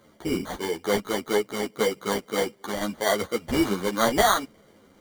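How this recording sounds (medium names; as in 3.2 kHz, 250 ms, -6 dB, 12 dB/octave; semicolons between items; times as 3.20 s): aliases and images of a low sample rate 2.6 kHz, jitter 0%; a shimmering, thickened sound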